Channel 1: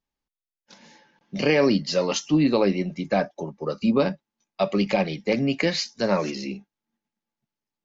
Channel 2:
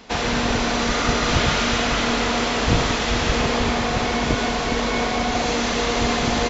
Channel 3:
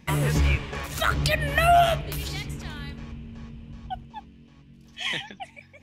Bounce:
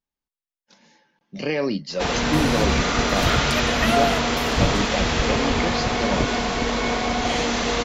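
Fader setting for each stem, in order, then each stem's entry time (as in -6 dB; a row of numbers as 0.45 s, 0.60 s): -4.5 dB, -1.0 dB, -3.5 dB; 0.00 s, 1.90 s, 2.25 s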